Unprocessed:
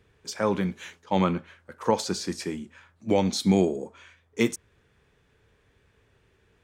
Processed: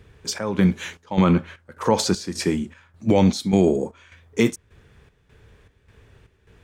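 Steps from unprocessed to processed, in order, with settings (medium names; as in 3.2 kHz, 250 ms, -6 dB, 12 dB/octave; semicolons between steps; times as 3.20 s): bass shelf 150 Hz +7.5 dB; peak limiter -15.5 dBFS, peak gain reduction 7 dB; square tremolo 1.7 Hz, depth 65%, duty 65%; trim +8.5 dB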